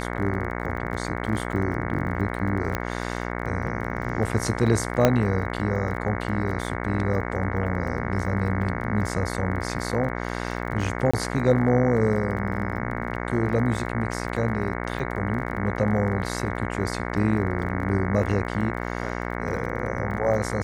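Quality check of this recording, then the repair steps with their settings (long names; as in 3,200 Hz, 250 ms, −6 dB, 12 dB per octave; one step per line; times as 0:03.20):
mains buzz 60 Hz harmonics 37 −30 dBFS
surface crackle 25 per second −34 dBFS
0:02.75: click −11 dBFS
0:05.05: click −4 dBFS
0:11.11–0:11.13: drop-out 25 ms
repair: click removal
hum removal 60 Hz, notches 37
repair the gap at 0:11.11, 25 ms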